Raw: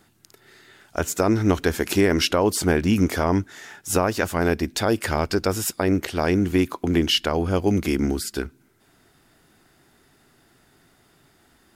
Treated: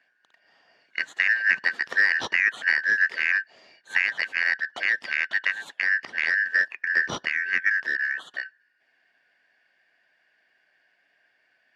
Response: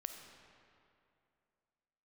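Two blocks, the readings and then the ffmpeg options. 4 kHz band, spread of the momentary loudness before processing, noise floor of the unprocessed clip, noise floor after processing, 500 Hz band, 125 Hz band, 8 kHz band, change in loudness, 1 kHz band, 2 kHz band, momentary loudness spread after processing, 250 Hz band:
-8.5 dB, 7 LU, -60 dBFS, -69 dBFS, -23.0 dB, under -25 dB, under -15 dB, -1.0 dB, -13.0 dB, +11.0 dB, 8 LU, -29.0 dB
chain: -af "afftfilt=real='real(if(lt(b,272),68*(eq(floor(b/68),0)*2+eq(floor(b/68),1)*0+eq(floor(b/68),2)*3+eq(floor(b/68),3)*1)+mod(b,68),b),0)':imag='imag(if(lt(b,272),68*(eq(floor(b/68),0)*2+eq(floor(b/68),1)*0+eq(floor(b/68),2)*3+eq(floor(b/68),3)*1)+mod(b,68),b),0)':win_size=2048:overlap=0.75,aeval=exprs='0.668*(cos(1*acos(clip(val(0)/0.668,-1,1)))-cos(1*PI/2))+0.0473*(cos(7*acos(clip(val(0)/0.668,-1,1)))-cos(7*PI/2))':c=same,highpass=210,lowpass=2.6k"

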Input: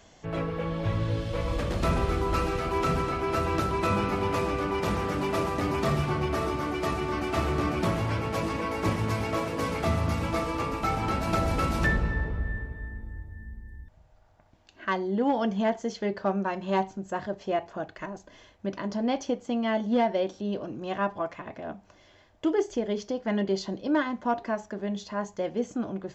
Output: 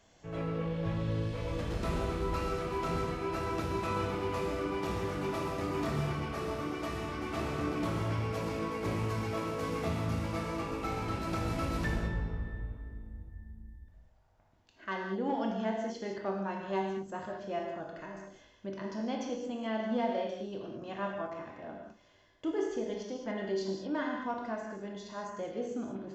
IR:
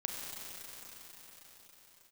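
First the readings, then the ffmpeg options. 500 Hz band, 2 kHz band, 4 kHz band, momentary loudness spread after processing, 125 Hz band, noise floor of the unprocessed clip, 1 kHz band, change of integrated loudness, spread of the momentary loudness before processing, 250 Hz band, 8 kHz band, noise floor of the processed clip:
-6.0 dB, -7.5 dB, -6.5 dB, 10 LU, -6.0 dB, -58 dBFS, -7.5 dB, -6.5 dB, 10 LU, -6.5 dB, -6.5 dB, -63 dBFS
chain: -filter_complex "[1:a]atrim=start_sample=2205,afade=t=out:st=0.42:d=0.01,atrim=end_sample=18963,asetrate=74970,aresample=44100[a];[0:a][a]afir=irnorm=-1:irlink=0,volume=-3.5dB"

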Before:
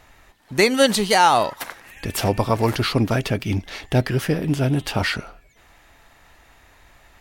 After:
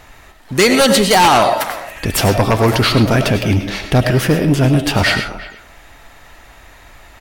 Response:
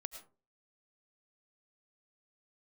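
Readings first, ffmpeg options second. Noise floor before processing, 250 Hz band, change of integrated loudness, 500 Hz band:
-54 dBFS, +7.5 dB, +6.5 dB, +6.5 dB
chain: -filter_complex "[0:a]asplit=2[a][b];[b]adelay=350,highpass=300,lowpass=3.4k,asoftclip=type=hard:threshold=-12dB,volume=-18dB[c];[a][c]amix=inputs=2:normalize=0[d];[1:a]atrim=start_sample=2205[e];[d][e]afir=irnorm=-1:irlink=0,aeval=exprs='0.501*sin(PI/2*2.82*val(0)/0.501)':c=same"

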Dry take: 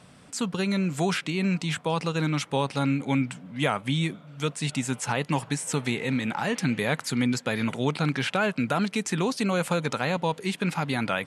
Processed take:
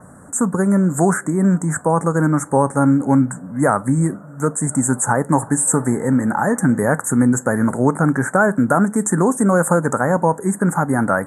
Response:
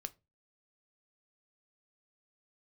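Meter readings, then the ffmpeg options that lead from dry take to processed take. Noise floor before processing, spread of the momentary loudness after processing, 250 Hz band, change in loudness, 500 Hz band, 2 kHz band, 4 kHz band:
-52 dBFS, 4 LU, +11.0 dB, +10.0 dB, +10.5 dB, +6.0 dB, under -25 dB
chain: -filter_complex "[0:a]adynamicequalizer=threshold=0.00251:dfrequency=8400:dqfactor=3.7:tfrequency=8400:tqfactor=3.7:attack=5:release=100:ratio=0.375:range=3.5:mode=boostabove:tftype=bell,asuperstop=centerf=3500:order=12:qfactor=0.67,asplit=2[a][b];[1:a]atrim=start_sample=2205,asetrate=30429,aresample=44100,highshelf=f=11k:g=7.5[c];[b][c]afir=irnorm=-1:irlink=0,volume=-2.5dB[d];[a][d]amix=inputs=2:normalize=0,volume=6.5dB"

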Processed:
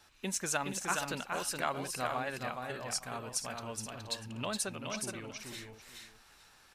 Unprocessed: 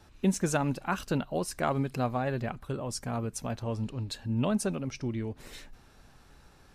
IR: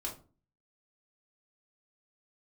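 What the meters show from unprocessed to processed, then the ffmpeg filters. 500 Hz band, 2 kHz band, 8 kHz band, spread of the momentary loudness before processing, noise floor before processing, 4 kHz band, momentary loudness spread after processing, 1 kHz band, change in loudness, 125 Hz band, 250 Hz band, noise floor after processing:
-6.5 dB, +1.0 dB, +3.5 dB, 8 LU, -58 dBFS, +3.0 dB, 11 LU, -2.5 dB, -4.5 dB, -13.5 dB, -12.0 dB, -62 dBFS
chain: -filter_complex "[0:a]tiltshelf=f=630:g=-9,asplit=2[a][b];[b]aecho=0:1:419|475|861:0.596|0.299|0.112[c];[a][c]amix=inputs=2:normalize=0,volume=-7dB"

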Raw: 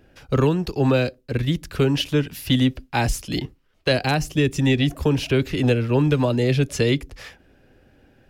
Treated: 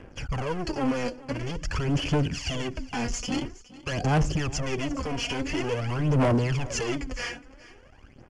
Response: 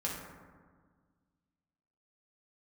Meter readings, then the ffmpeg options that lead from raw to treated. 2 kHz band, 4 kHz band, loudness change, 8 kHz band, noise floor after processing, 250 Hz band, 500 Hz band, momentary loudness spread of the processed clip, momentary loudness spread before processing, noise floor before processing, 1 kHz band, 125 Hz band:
-5.5 dB, -6.5 dB, -7.0 dB, -1.0 dB, -52 dBFS, -7.5 dB, -8.0 dB, 9 LU, 7 LU, -60 dBFS, -3.0 dB, -6.5 dB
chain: -af "agate=range=-9dB:threshold=-48dB:ratio=16:detection=peak,alimiter=limit=-19dB:level=0:latency=1:release=186,acontrast=59,acrusher=bits=8:mix=0:aa=0.5,asoftclip=type=tanh:threshold=-30dB,aphaser=in_gain=1:out_gain=1:delay=4.2:decay=0.67:speed=0.48:type=sinusoidal,aecho=1:1:416:0.112,aresample=16000,aresample=44100,asuperstop=centerf=3800:order=4:qfactor=3.5,volume=1.5dB" -ar 22050 -c:a adpcm_ima_wav

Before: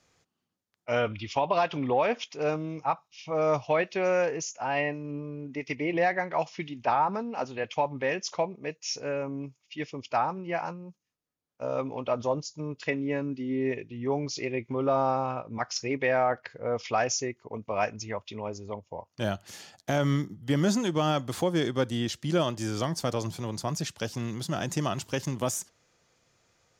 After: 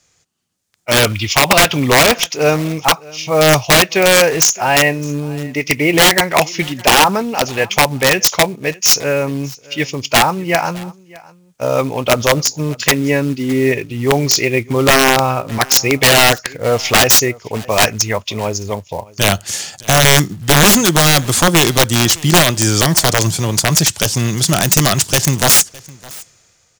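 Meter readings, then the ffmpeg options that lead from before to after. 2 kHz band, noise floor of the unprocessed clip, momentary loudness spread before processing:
+20.0 dB, -81 dBFS, 11 LU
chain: -filter_complex "[0:a]equalizer=f=250:t=o:w=1:g=-5,equalizer=f=500:t=o:w=1:g=-3,equalizer=f=1k:t=o:w=1:g=-4,equalizer=f=8k:t=o:w=1:g=9,acrusher=bits=5:mode=log:mix=0:aa=0.000001,aeval=exprs='(mod(11.2*val(0)+1,2)-1)/11.2':c=same,dynaudnorm=f=160:g=9:m=12dB,asplit=2[a][b];[b]aecho=0:1:611:0.0708[c];[a][c]amix=inputs=2:normalize=0,volume=7dB"

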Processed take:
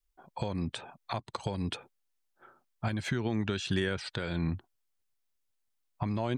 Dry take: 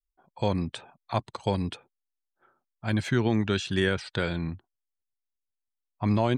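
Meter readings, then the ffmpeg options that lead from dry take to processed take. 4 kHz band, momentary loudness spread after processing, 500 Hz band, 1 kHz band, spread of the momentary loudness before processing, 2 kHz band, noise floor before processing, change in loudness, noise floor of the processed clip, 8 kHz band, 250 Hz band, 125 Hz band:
-3.5 dB, 8 LU, -7.0 dB, -6.0 dB, 11 LU, -5.5 dB, -85 dBFS, -5.5 dB, -78 dBFS, -2.5 dB, -6.0 dB, -5.0 dB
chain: -af "acompressor=threshold=-32dB:ratio=12,alimiter=level_in=2dB:limit=-24dB:level=0:latency=1:release=316,volume=-2dB,volume=7dB"

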